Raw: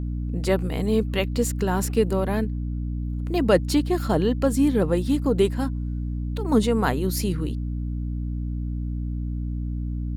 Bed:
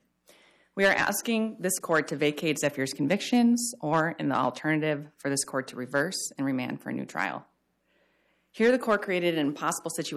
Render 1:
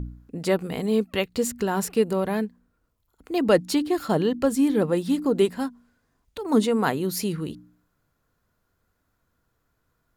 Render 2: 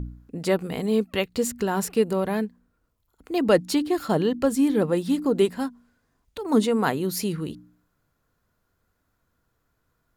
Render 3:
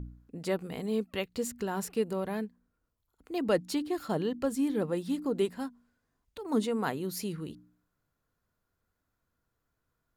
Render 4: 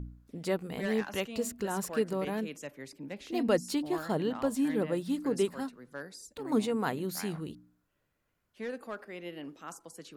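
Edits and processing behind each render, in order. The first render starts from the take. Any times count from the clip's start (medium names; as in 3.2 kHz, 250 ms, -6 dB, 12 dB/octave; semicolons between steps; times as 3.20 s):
de-hum 60 Hz, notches 5
no audible change
trim -8.5 dB
add bed -16 dB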